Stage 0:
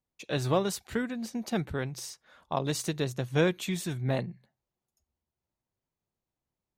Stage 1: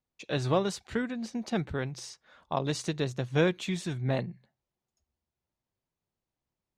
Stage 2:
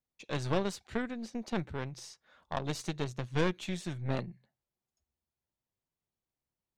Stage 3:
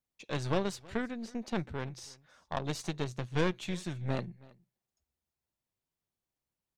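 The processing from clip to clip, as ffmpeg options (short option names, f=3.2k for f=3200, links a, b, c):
-af "lowpass=6.6k"
-af "aeval=exprs='0.211*(cos(1*acos(clip(val(0)/0.211,-1,1)))-cos(1*PI/2))+0.0422*(cos(4*acos(clip(val(0)/0.211,-1,1)))-cos(4*PI/2))+0.00422*(cos(8*acos(clip(val(0)/0.211,-1,1)))-cos(8*PI/2))':c=same,volume=-5dB"
-af "aecho=1:1:322:0.0668"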